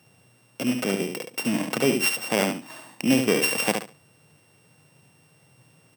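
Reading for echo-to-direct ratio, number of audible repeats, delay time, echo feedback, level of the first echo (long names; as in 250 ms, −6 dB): −6.0 dB, 3, 71 ms, 19%, −6.0 dB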